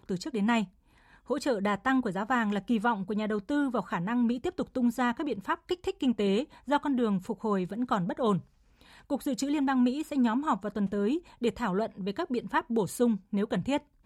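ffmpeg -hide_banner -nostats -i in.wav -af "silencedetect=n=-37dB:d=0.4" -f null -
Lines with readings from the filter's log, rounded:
silence_start: 0.64
silence_end: 1.30 | silence_duration: 0.66
silence_start: 8.40
silence_end: 9.10 | silence_duration: 0.70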